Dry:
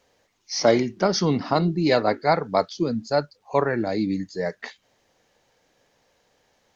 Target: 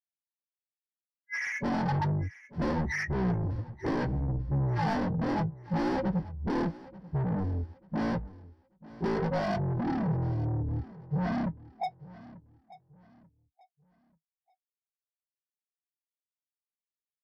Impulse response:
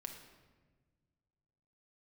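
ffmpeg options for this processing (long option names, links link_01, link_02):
-filter_complex "[0:a]afftfilt=real='re*gte(hypot(re,im),0.112)':imag='im*gte(hypot(re,im),0.112)':win_size=1024:overlap=0.75,afftdn=noise_reduction=32:noise_floor=-33,highshelf=frequency=3800:width_type=q:width=1.5:gain=-14,aresample=16000,aresample=44100,acompressor=threshold=-20dB:ratio=4,asetrate=17287,aresample=44100,asplit=2[link_01][link_02];[link_02]highpass=frequency=720:poles=1,volume=42dB,asoftclip=type=tanh:threshold=-10.5dB[link_03];[link_01][link_03]amix=inputs=2:normalize=0,lowpass=frequency=1100:poles=1,volume=-6dB,flanger=delay=5.3:depth=1.7:regen=64:speed=0.32:shape=triangular,superequalizer=9b=1.78:11b=1.78:13b=1.41:14b=3.55,asplit=2[link_04][link_05];[link_05]aecho=0:1:888|1776|2664:0.112|0.0348|0.0108[link_06];[link_04][link_06]amix=inputs=2:normalize=0,volume=-7.5dB" -ar 48000 -c:a libvorbis -b:a 96k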